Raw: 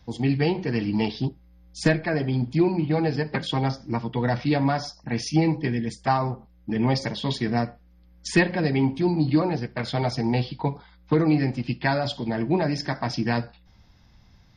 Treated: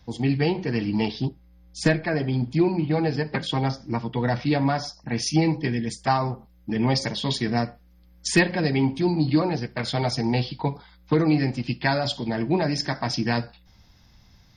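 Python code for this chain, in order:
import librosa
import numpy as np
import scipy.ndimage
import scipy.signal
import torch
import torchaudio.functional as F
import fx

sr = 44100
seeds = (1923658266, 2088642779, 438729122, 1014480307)

y = fx.high_shelf(x, sr, hz=4800.0, db=fx.steps((0.0, 2.5), (5.2, 9.5)))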